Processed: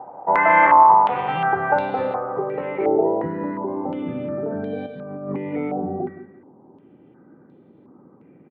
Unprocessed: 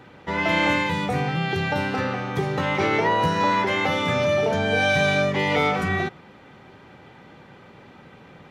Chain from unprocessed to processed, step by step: 2.12–2.87 s: bass shelf 220 Hz -9.5 dB; 4.86–5.54 s: compressor with a negative ratio -24 dBFS, ratio -0.5; low-pass sweep 920 Hz -> 300 Hz, 1.32–3.47 s; 0.66–1.29 s: AM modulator 230 Hz, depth 80%; high-pass 83 Hz; tilt EQ +4 dB/octave; feedback delay 169 ms, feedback 27%, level -11 dB; step-sequenced low-pass 2.8 Hz 740–3800 Hz; trim +3 dB

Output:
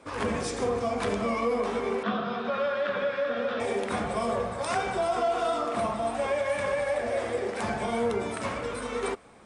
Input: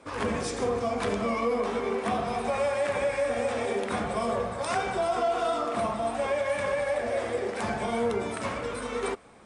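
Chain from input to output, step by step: 2.03–3.60 s: cabinet simulation 190–4100 Hz, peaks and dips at 200 Hz +7 dB, 320 Hz -5 dB, 810 Hz -10 dB, 1.4 kHz +9 dB, 2.2 kHz -8 dB, 3.5 kHz +5 dB

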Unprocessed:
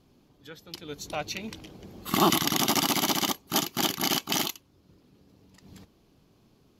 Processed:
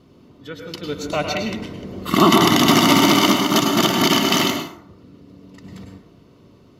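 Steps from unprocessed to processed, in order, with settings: treble shelf 5.5 kHz -12 dB; comb of notches 810 Hz; plate-style reverb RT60 0.69 s, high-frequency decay 0.5×, pre-delay 90 ms, DRR 3 dB; loudness maximiser +13.5 dB; 2.45–4.50 s: bit-crushed delay 213 ms, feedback 35%, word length 7-bit, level -6.5 dB; trim -1.5 dB

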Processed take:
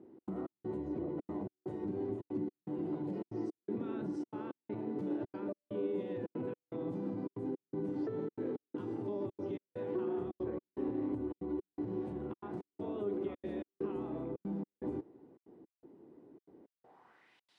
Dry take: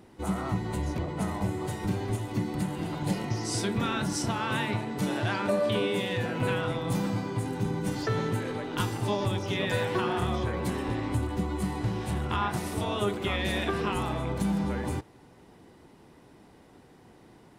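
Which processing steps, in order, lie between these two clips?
peak limiter -24.5 dBFS, peak gain reduction 7.5 dB; trance gate "xx.xx..xxxx" 163 bpm -60 dB; band-pass sweep 340 Hz -> 3.9 kHz, 16.61–17.49 s; trim +2 dB

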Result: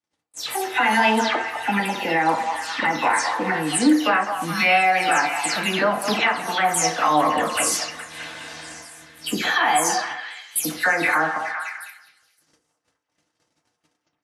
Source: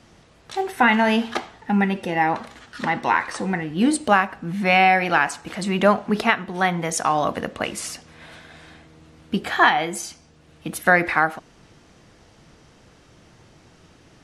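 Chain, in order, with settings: delay that grows with frequency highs early, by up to 179 ms; gate -47 dBFS, range -45 dB; high-pass 360 Hz 6 dB/octave; treble shelf 4.6 kHz +10.5 dB; in parallel at -2 dB: compression, threshold -31 dBFS, peak gain reduction 19 dB; on the sum: peak limiter -12 dBFS, peak gain reduction 10.5 dB; on a send: repeats whose band climbs or falls 208 ms, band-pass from 860 Hz, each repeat 0.7 oct, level -5.5 dB; on the sum: FDN reverb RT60 0.52 s, low-frequency decay 0.75×, high-frequency decay 0.45×, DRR 2.5 dB

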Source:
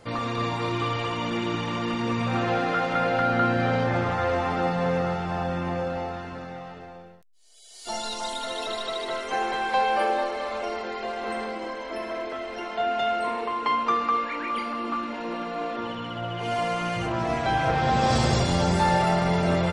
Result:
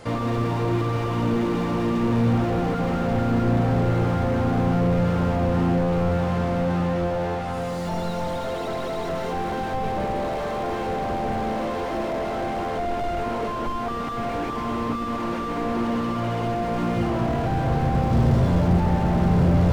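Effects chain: echo that smears into a reverb 1165 ms, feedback 43%, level -4 dB; slew-rate limiter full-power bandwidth 16 Hz; trim +7.5 dB

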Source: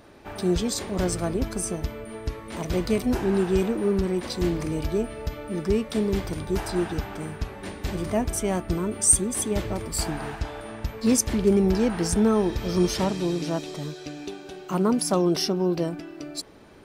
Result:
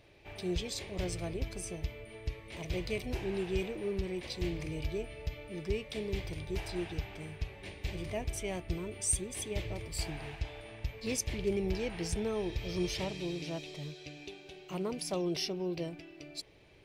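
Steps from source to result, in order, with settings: FFT filter 140 Hz 0 dB, 230 Hz -13 dB, 340 Hz -5 dB, 590 Hz -4 dB, 1.4 kHz -12 dB, 2.3 kHz +5 dB, 8.5 kHz -7 dB; trim -6.5 dB

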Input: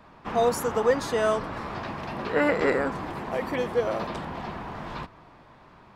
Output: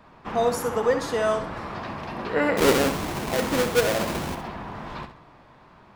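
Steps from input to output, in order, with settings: 2.57–4.35 s: square wave that keeps the level; flutter echo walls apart 11.3 m, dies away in 0.4 s

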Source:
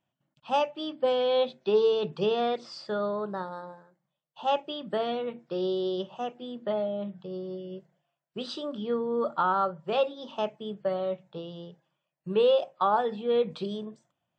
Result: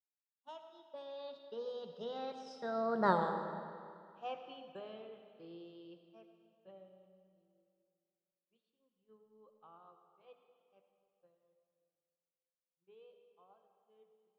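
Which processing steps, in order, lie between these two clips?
Doppler pass-by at 3.12 s, 32 m/s, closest 2.4 m; expander -59 dBFS; on a send: reverberation RT60 2.3 s, pre-delay 48 ms, DRR 6.5 dB; on the sum: trim +6.5 dB

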